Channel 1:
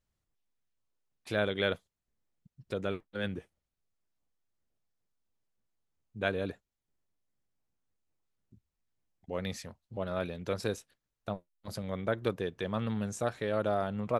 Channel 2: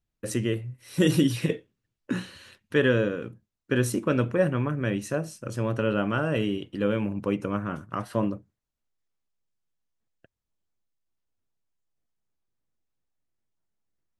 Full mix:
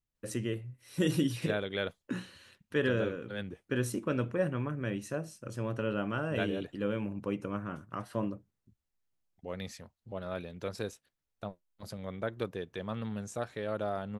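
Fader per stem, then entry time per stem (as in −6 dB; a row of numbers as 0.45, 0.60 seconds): −4.0, −7.5 decibels; 0.15, 0.00 seconds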